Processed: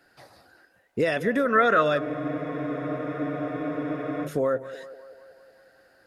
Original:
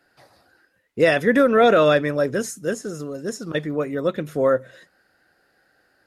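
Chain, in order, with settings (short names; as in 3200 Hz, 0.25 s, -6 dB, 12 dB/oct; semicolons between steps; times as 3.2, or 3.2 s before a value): compressor 3:1, threshold -26 dBFS, peak gain reduction 11 dB; spectral gain 1.46–1.82, 1000–2100 Hz +10 dB; narrowing echo 0.188 s, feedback 69%, band-pass 710 Hz, level -13.5 dB; spectral freeze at 2.01, 2.24 s; gain +2 dB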